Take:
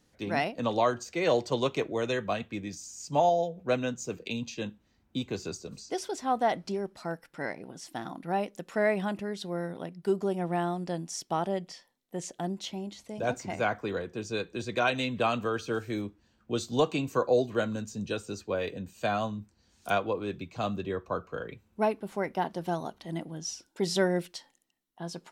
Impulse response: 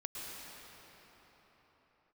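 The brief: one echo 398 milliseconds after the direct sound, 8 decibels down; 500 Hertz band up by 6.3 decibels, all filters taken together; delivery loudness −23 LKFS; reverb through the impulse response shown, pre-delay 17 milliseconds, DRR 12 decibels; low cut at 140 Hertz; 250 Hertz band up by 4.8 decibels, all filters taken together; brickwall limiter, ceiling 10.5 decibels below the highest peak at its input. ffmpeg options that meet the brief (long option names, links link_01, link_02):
-filter_complex "[0:a]highpass=140,equalizer=frequency=250:width_type=o:gain=5,equalizer=frequency=500:width_type=o:gain=6.5,alimiter=limit=-18dB:level=0:latency=1,aecho=1:1:398:0.398,asplit=2[link_01][link_02];[1:a]atrim=start_sample=2205,adelay=17[link_03];[link_02][link_03]afir=irnorm=-1:irlink=0,volume=-12.5dB[link_04];[link_01][link_04]amix=inputs=2:normalize=0,volume=6.5dB"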